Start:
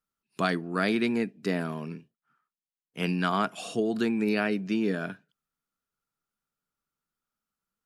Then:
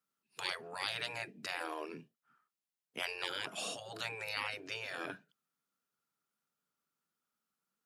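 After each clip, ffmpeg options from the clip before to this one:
-af "afftfilt=real='re*lt(hypot(re,im),0.0631)':imag='im*lt(hypot(re,im),0.0631)':win_size=1024:overlap=0.75,highpass=150"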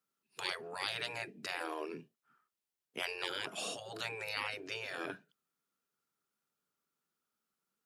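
-af "equalizer=f=390:t=o:w=0.52:g=4.5"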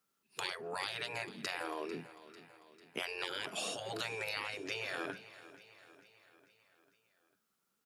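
-af "acompressor=threshold=-41dB:ratio=6,aecho=1:1:446|892|1338|1784|2230:0.15|0.0838|0.0469|0.0263|0.0147,volume=5.5dB"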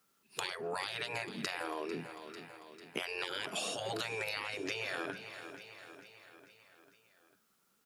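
-af "acompressor=threshold=-42dB:ratio=6,volume=7.5dB"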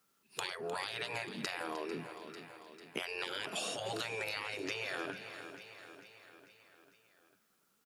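-af "aecho=1:1:306:0.188,volume=-1dB"

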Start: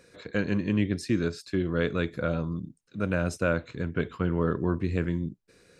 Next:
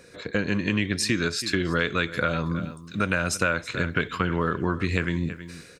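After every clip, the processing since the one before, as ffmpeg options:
-filter_complex "[0:a]acrossover=split=1100[a][b];[b]dynaudnorm=f=370:g=3:m=11.5dB[c];[a][c]amix=inputs=2:normalize=0,aecho=1:1:323:0.119,acompressor=threshold=-28dB:ratio=4,volume=6.5dB"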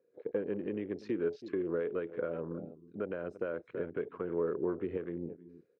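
-af "afwtdn=0.0251,alimiter=limit=-13.5dB:level=0:latency=1:release=223,bandpass=f=430:t=q:w=3:csg=0"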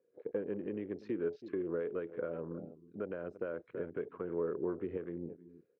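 -af "highshelf=f=4k:g=-10,volume=-2.5dB"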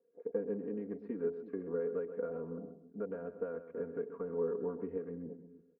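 -af "lowpass=1.3k,aecho=1:1:4.3:0.91,aecho=1:1:130|260|390:0.251|0.0553|0.0122,volume=-3dB"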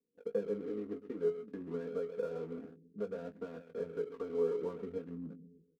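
-filter_complex "[0:a]flanger=delay=0.9:depth=1.9:regen=-46:speed=0.58:shape=triangular,acrossover=split=150|380[a][b][c];[c]aeval=exprs='sgn(val(0))*max(abs(val(0))-0.00106,0)':c=same[d];[a][b][d]amix=inputs=3:normalize=0,asplit=2[e][f];[f]adelay=19,volume=-9dB[g];[e][g]amix=inputs=2:normalize=0,volume=4dB"

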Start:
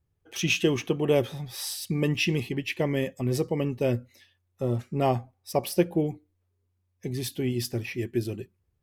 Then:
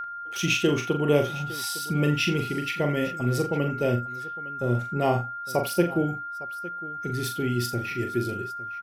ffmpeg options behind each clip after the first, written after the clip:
-filter_complex "[0:a]aeval=exprs='val(0)+0.0316*sin(2*PI*1400*n/s)':c=same,asplit=2[a][b];[b]aecho=0:1:41|82|858:0.501|0.15|0.133[c];[a][c]amix=inputs=2:normalize=0"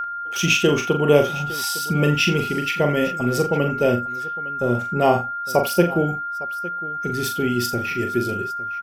-af "equalizer=f=125:t=o:w=0.33:g=-9,equalizer=f=315:t=o:w=0.33:g=-6,equalizer=f=2k:t=o:w=0.33:g=-4,equalizer=f=4k:t=o:w=0.33:g=-5,equalizer=f=10k:t=o:w=0.33:g=-5,volume=7.5dB"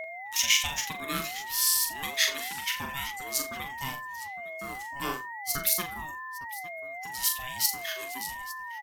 -af "aderivative,aeval=exprs='val(0)*sin(2*PI*560*n/s+560*0.35/0.88*sin(2*PI*0.88*n/s))':c=same,volume=6dB"

